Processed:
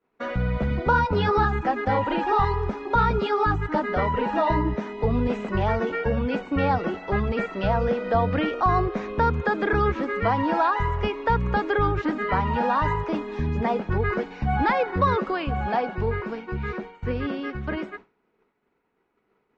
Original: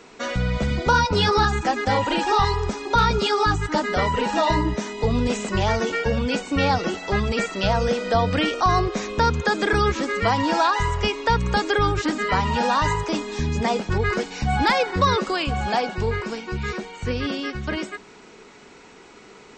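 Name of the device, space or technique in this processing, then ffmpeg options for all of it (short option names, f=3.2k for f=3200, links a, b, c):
hearing-loss simulation: -af "lowpass=1.9k,agate=range=-33dB:threshold=-33dB:ratio=3:detection=peak,volume=-1.5dB"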